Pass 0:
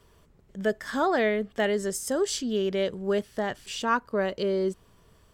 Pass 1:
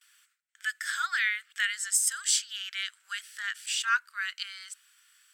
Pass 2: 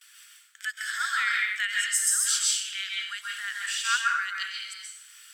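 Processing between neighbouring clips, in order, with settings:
Chebyshev high-pass 1400 Hz, order 5; gate with hold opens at -60 dBFS; bell 8200 Hz +8.5 dB 0.25 oct; gain +5 dB
plate-style reverb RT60 0.71 s, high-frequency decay 0.9×, pre-delay 0.12 s, DRR -2 dB; mismatched tape noise reduction encoder only; gain -1 dB

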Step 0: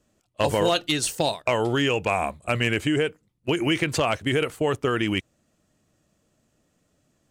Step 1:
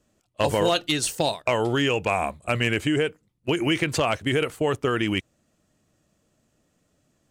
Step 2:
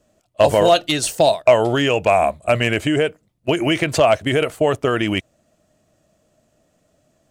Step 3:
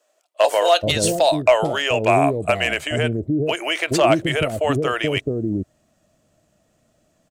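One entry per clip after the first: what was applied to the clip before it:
nothing audible
bell 640 Hz +11 dB 0.35 oct; gain +4 dB
bands offset in time highs, lows 0.43 s, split 460 Hz

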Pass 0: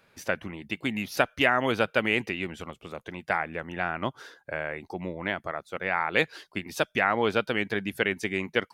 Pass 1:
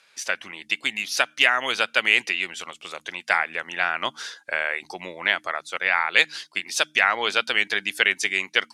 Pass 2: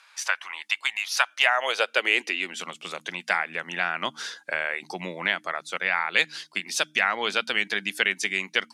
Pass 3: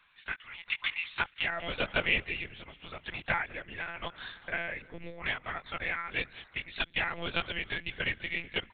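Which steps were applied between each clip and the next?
weighting filter ITU-R 468; AGC gain up to 5.5 dB; de-hum 76.46 Hz, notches 4
in parallel at +1 dB: compressor, threshold -30 dBFS, peak gain reduction 17.5 dB; on the sum: high-pass sweep 980 Hz -> 170 Hz, 1.2–2.73; gain -5.5 dB
frequency-shifting echo 0.199 s, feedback 50%, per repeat -49 Hz, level -19 dB; rotary speaker horn 0.85 Hz, later 5 Hz, at 6.94; monotone LPC vocoder at 8 kHz 170 Hz; gain -5 dB

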